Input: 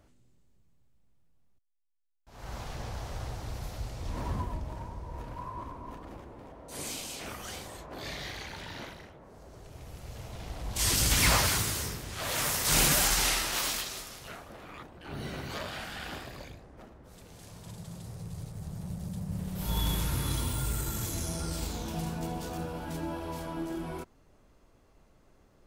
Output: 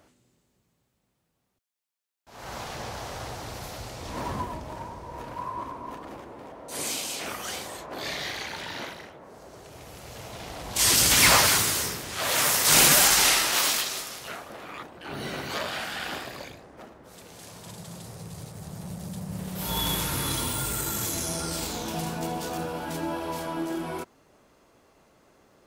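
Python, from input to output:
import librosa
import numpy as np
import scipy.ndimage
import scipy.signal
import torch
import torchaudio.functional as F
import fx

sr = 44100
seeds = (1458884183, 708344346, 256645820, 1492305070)

y = fx.highpass(x, sr, hz=300.0, slope=6)
y = F.gain(torch.from_numpy(y), 7.5).numpy()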